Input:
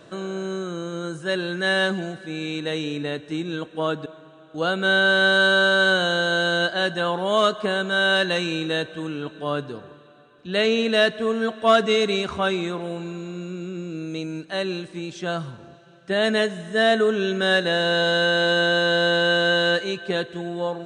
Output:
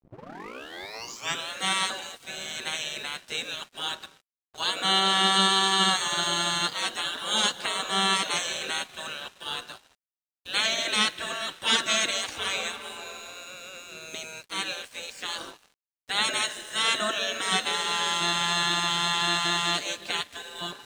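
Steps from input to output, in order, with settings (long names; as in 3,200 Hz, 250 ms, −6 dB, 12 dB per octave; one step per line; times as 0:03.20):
turntable start at the beginning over 1.50 s
noise gate −44 dBFS, range −11 dB
high-shelf EQ 2,200 Hz +8.5 dB
gate on every frequency bin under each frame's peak −15 dB weak
dead-zone distortion −51.5 dBFS
level +3.5 dB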